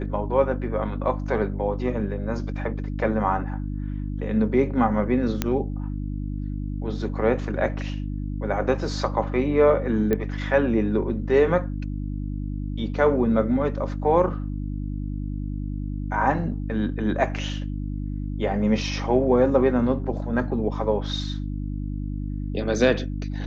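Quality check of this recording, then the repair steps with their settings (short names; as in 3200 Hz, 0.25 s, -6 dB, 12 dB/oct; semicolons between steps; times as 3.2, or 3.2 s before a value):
hum 50 Hz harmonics 6 -29 dBFS
5.42 pop -8 dBFS
10.13 pop -12 dBFS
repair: de-click; de-hum 50 Hz, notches 6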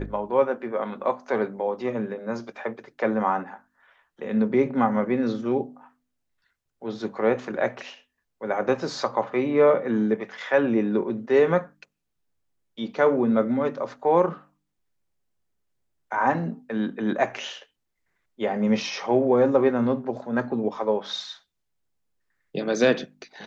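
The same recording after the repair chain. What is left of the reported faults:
none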